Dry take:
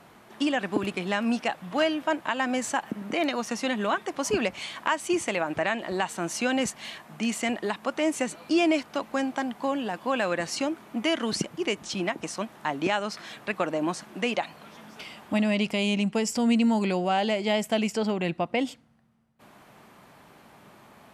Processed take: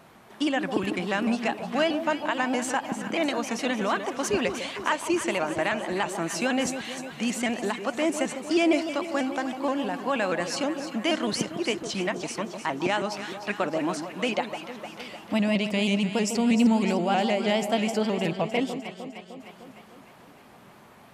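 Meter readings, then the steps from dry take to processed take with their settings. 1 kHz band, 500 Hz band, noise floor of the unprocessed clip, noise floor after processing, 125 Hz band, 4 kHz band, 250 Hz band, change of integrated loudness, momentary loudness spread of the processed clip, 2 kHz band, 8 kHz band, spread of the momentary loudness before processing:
+1.0 dB, +1.0 dB, −54 dBFS, −51 dBFS, +1.5 dB, +0.5 dB, +1.0 dB, +1.0 dB, 8 LU, +0.5 dB, +0.5 dB, 7 LU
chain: on a send: delay that swaps between a low-pass and a high-pass 152 ms, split 1,000 Hz, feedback 77%, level −8 dB
on the sum: pitch modulation by a square or saw wave saw up 6.3 Hz, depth 100 cents

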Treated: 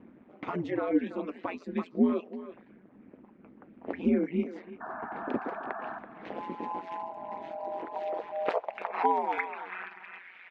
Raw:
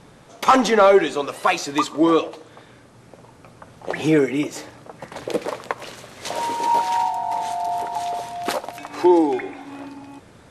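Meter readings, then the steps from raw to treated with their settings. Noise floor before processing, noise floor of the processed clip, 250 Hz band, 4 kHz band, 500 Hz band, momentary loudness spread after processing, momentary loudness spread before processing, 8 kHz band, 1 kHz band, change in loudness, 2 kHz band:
−49 dBFS, −57 dBFS, −9.0 dB, below −20 dB, −13.5 dB, 15 LU, 20 LU, below −35 dB, −12.5 dB, −12.5 dB, −11.5 dB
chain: reverb reduction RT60 0.66 s
low-pass that shuts in the quiet parts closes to 2,300 Hz, open at −17 dBFS
parametric band 2,300 Hz +15 dB 1.5 octaves
downward compressor 2.5 to 1, threshold −19 dBFS, peak gain reduction 10.5 dB
ring modulation 88 Hz
sound drawn into the spectrogram noise, 0:04.80–0:05.99, 620–1,800 Hz −24 dBFS
band-pass filter sweep 250 Hz → 2,500 Hz, 0:07.36–0:10.51
far-end echo of a speakerphone 330 ms, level −12 dB
level +4 dB

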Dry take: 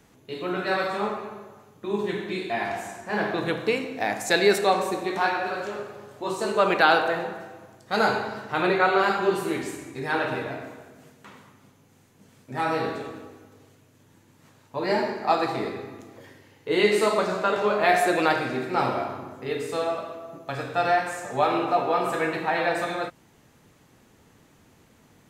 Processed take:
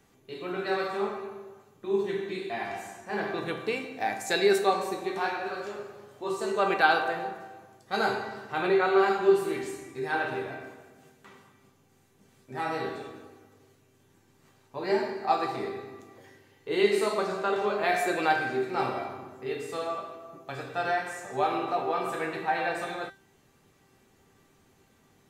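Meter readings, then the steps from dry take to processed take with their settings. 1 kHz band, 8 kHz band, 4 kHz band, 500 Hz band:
−4.0 dB, −5.0 dB, −5.0 dB, −3.0 dB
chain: tuned comb filter 390 Hz, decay 0.27 s, harmonics all, mix 80%
level +6 dB

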